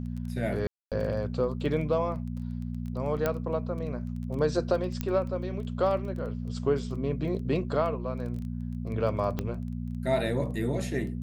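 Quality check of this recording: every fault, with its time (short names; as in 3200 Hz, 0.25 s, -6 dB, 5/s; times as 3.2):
crackle 11/s -37 dBFS
hum 60 Hz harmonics 4 -34 dBFS
0.67–0.92 gap 0.247 s
3.26 pop -13 dBFS
5.01 pop -16 dBFS
9.39 pop -17 dBFS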